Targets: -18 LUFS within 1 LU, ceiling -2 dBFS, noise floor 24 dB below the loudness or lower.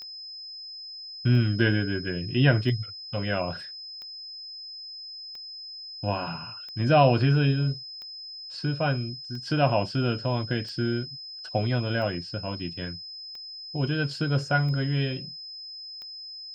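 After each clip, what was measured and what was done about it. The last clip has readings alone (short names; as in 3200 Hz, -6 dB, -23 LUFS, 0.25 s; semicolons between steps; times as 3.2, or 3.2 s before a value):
clicks 13; steady tone 5100 Hz; tone level -38 dBFS; loudness -28.0 LUFS; peak -8.0 dBFS; loudness target -18.0 LUFS
-> de-click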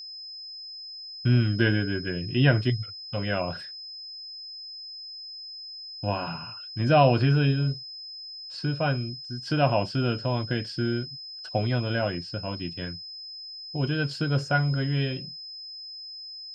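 clicks 0; steady tone 5100 Hz; tone level -38 dBFS
-> notch 5100 Hz, Q 30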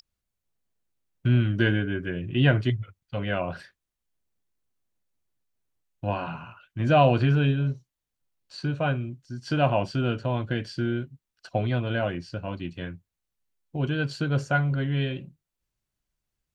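steady tone none; loudness -26.5 LUFS; peak -8.0 dBFS; loudness target -18.0 LUFS
-> gain +8.5 dB; limiter -2 dBFS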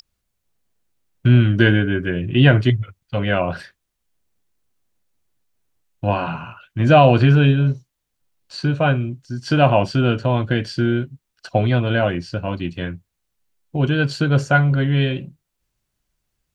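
loudness -18.0 LUFS; peak -2.0 dBFS; noise floor -77 dBFS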